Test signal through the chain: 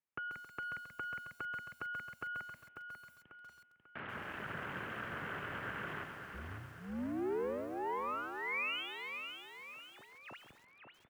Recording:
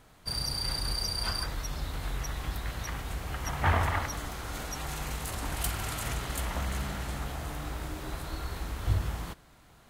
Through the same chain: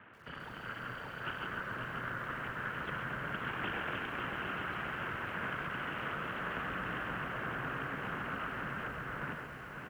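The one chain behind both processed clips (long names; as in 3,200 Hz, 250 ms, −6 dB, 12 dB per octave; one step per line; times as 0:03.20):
reversed playback
upward compression, threshold −46 dBFS
reversed playback
thirty-one-band graphic EQ 160 Hz +10 dB, 400 Hz −5 dB, 1,600 Hz +11 dB
downward compressor 5 to 1, threshold −34 dBFS
dynamic equaliser 590 Hz, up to −5 dB, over −56 dBFS, Q 5.8
wave folding −27 dBFS
phaser with its sweep stopped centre 580 Hz, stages 8
full-wave rectification
on a send: repeating echo 543 ms, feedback 45%, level −7 dB
on the sum: single-sideband voice off tune −77 Hz 180–2,700 Hz
feedback echo at a low word length 135 ms, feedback 55%, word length 11 bits, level −8 dB
level +7 dB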